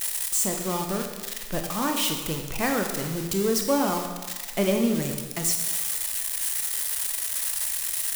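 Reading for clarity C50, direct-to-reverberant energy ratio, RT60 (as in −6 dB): 5.0 dB, 3.5 dB, 1.4 s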